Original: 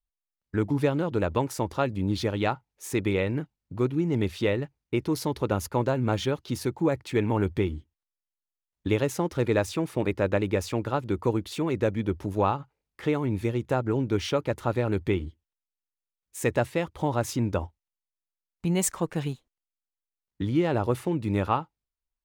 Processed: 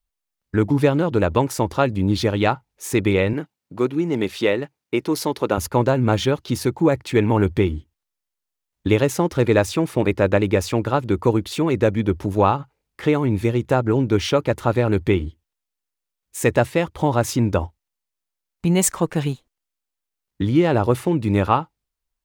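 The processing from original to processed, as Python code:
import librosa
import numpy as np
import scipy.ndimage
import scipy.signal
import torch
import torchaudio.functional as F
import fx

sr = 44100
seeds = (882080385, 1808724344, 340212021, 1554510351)

y = fx.bessel_highpass(x, sr, hz=260.0, order=2, at=(3.33, 5.58))
y = y * 10.0 ** (7.5 / 20.0)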